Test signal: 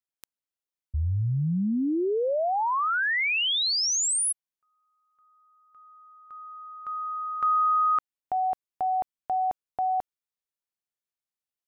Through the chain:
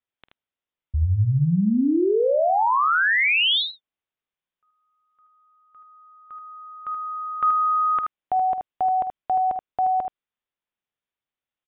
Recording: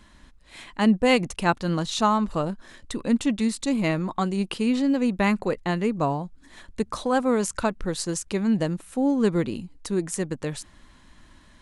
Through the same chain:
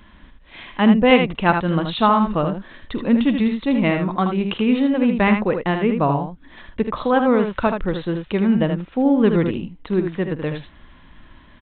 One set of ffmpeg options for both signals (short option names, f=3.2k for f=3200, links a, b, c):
-af "aecho=1:1:48|78:0.158|0.473,aresample=8000,aresample=44100,volume=5dB"